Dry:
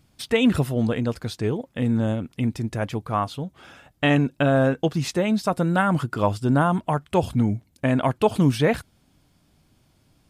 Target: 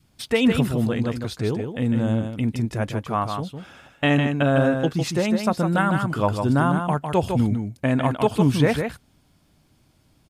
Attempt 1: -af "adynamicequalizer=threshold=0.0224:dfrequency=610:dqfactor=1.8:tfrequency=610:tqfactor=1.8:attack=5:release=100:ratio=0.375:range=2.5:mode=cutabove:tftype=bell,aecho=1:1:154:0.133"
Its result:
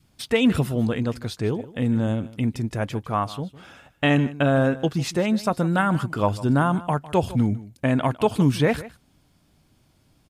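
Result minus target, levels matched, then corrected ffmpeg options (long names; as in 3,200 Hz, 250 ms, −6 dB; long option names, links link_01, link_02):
echo-to-direct −11.5 dB
-af "adynamicequalizer=threshold=0.0224:dfrequency=610:dqfactor=1.8:tfrequency=610:tqfactor=1.8:attack=5:release=100:ratio=0.375:range=2.5:mode=cutabove:tftype=bell,aecho=1:1:154:0.501"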